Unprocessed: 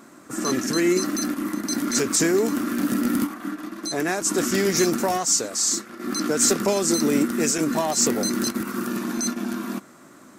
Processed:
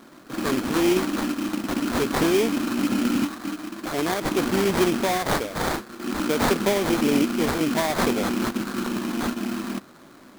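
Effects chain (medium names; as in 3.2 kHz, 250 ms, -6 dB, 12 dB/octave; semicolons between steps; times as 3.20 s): treble shelf 10 kHz -9.5 dB; sample-rate reducer 2.8 kHz, jitter 20%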